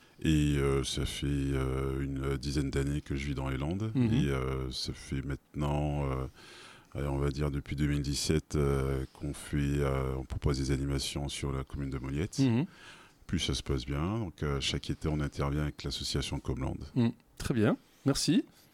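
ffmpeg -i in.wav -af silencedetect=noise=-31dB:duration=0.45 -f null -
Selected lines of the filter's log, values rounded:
silence_start: 6.26
silence_end: 6.95 | silence_duration: 0.69
silence_start: 12.64
silence_end: 13.29 | silence_duration: 0.65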